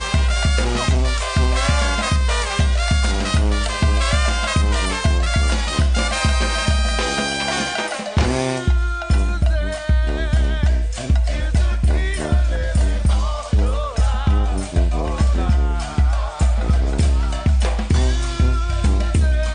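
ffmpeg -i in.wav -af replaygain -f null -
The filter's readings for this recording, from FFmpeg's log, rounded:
track_gain = +4.2 dB
track_peak = 0.396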